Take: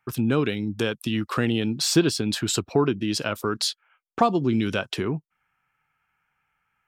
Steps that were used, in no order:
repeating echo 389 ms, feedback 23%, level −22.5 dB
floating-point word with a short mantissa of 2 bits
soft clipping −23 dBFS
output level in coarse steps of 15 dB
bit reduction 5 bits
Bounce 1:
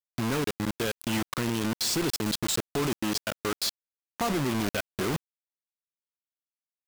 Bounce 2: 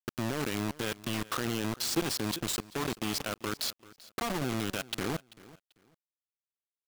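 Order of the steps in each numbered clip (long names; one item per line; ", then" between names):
floating-point word with a short mantissa, then repeating echo, then soft clipping, then output level in coarse steps, then bit reduction
output level in coarse steps, then floating-point word with a short mantissa, then bit reduction, then repeating echo, then soft clipping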